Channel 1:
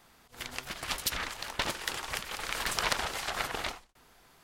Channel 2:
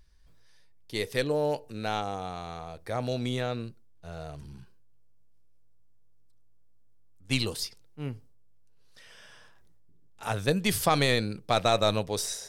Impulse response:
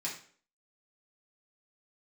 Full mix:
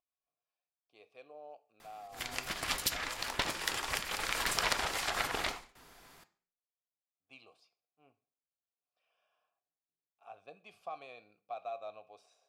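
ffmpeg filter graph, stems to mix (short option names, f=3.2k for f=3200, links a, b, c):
-filter_complex "[0:a]adelay=1800,volume=1dB,asplit=2[a][b];[b]volume=-11dB[c];[1:a]asplit=3[d][e][f];[d]bandpass=f=730:t=q:w=8,volume=0dB[g];[e]bandpass=f=1.09k:t=q:w=8,volume=-6dB[h];[f]bandpass=f=2.44k:t=q:w=8,volume=-9dB[i];[g][h][i]amix=inputs=3:normalize=0,volume=-13dB,asplit=3[j][k][l];[k]volume=-12dB[m];[l]apad=whole_len=279454[n];[a][n]sidechaincompress=threshold=-53dB:ratio=8:attack=43:release=283[o];[2:a]atrim=start_sample=2205[p];[c][m]amix=inputs=2:normalize=0[q];[q][p]afir=irnorm=-1:irlink=0[r];[o][j][r]amix=inputs=3:normalize=0,acompressor=threshold=-34dB:ratio=1.5"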